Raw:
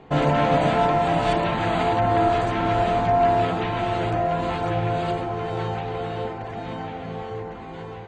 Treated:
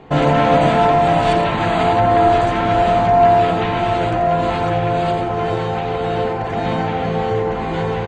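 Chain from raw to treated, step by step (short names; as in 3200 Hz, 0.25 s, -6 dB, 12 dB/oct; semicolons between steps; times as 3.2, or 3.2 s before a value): recorder AGC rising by 8.7 dB/s; on a send: echo 86 ms -9 dB; on the sum: gain +5 dB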